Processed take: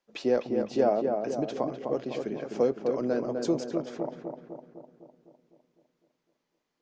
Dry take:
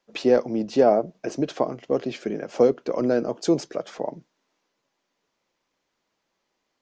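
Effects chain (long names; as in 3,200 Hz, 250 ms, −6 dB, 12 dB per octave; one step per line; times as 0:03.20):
feedback echo with a low-pass in the loop 253 ms, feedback 59%, low-pass 1,800 Hz, level −4.5 dB
level −7 dB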